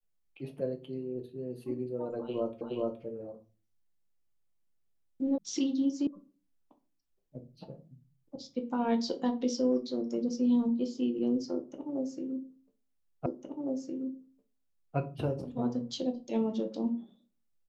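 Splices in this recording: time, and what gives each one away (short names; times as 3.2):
2.61 repeat of the last 0.42 s
5.38 sound cut off
6.07 sound cut off
13.26 repeat of the last 1.71 s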